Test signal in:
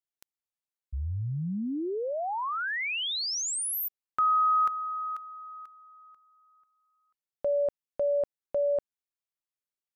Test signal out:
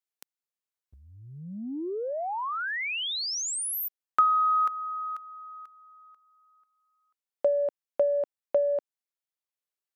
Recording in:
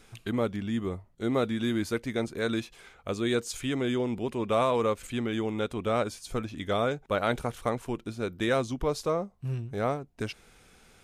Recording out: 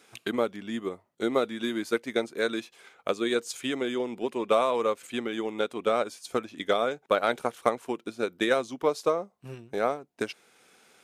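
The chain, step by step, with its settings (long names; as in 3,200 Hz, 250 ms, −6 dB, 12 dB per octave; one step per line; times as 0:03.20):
high-pass filter 290 Hz 12 dB per octave
transient designer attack +7 dB, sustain −2 dB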